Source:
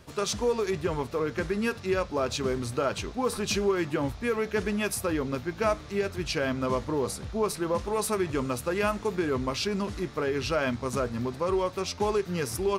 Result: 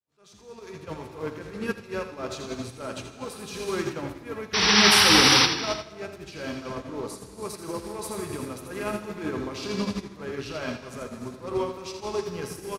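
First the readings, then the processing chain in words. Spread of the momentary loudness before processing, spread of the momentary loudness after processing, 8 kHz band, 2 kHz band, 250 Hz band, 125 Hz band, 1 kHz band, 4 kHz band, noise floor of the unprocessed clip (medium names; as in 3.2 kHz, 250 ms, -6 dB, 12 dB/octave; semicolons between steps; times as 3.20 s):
3 LU, 21 LU, +7.0 dB, +7.0 dB, -0.5 dB, -2.5 dB, +2.0 dB, +13.5 dB, -43 dBFS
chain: fade-in on the opening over 0.86 s; high-pass 73 Hz; transient shaper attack -11 dB, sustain +3 dB; in parallel at 0 dB: peak limiter -22.5 dBFS, peak gain reduction 7 dB; on the sum: painted sound noise, 4.53–5.46 s, 740–6000 Hz -19 dBFS; feedback delay 82 ms, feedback 44%, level -6.5 dB; gated-style reverb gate 420 ms flat, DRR 3.5 dB; upward expansion 2.5:1, over -27 dBFS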